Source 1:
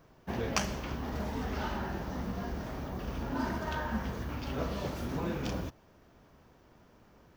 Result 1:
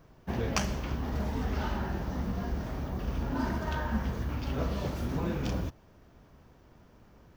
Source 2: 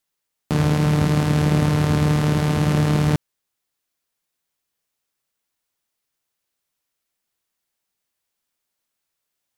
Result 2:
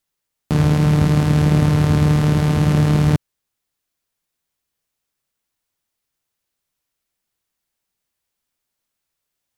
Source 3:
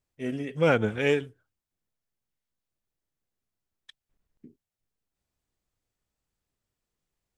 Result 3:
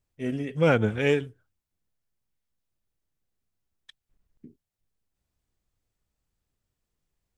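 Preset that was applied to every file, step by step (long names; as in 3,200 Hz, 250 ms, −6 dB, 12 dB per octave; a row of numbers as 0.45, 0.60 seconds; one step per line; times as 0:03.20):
low-shelf EQ 160 Hz +7 dB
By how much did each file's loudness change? +2.5, +3.0, +1.0 LU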